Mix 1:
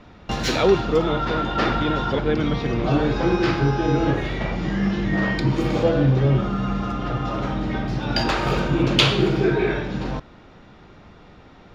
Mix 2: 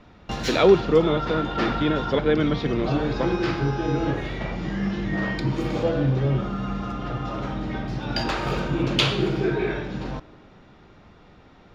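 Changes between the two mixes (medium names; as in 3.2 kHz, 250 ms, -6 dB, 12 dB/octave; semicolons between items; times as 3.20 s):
background -6.0 dB; reverb: on, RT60 2.6 s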